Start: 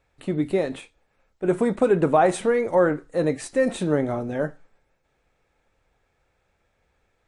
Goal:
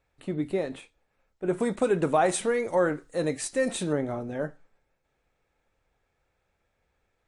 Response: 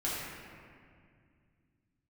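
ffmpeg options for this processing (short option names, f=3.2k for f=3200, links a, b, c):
-filter_complex "[0:a]asettb=1/sr,asplit=3[a][b][c];[a]atrim=end=1.604[d];[b]atrim=start=1.6:end=3.93,asetpts=PTS-STARTPTS,afade=t=in:d=0.004:c=qsin,afade=t=out:st=2.326:d=0.004:c=qsin,highshelf=f=2.9k:g=10.5[e];[c]atrim=start=3.926[f];[d][e]acrossfade=d=0.004:c1=hsin:c2=qsin[g];[g][f]acrossfade=d=0.004:c1=qsin:c2=hsin,volume=-5.5dB"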